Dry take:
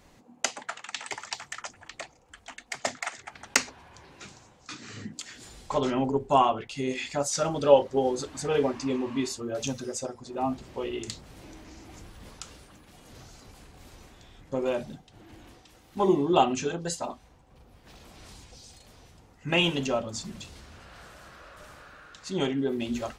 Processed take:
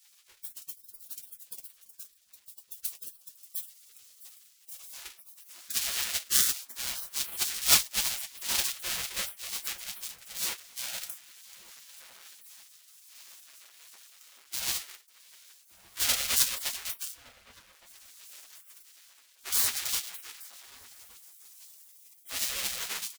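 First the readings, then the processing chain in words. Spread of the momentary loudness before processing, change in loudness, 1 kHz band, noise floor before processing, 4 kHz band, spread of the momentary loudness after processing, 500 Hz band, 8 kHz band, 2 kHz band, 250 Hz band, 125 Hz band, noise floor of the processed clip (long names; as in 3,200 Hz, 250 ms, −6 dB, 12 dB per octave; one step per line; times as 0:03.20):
24 LU, −0.5 dB, −16.5 dB, −58 dBFS, +3.0 dB, 24 LU, −25.5 dB, +6.0 dB, −3.0 dB, −25.5 dB, −18.5 dB, −61 dBFS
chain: each half-wave held at its own peak
gate on every frequency bin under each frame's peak −25 dB weak
high-shelf EQ 3,600 Hz +7 dB
notch comb filter 150 Hz
slap from a distant wall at 200 metres, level −16 dB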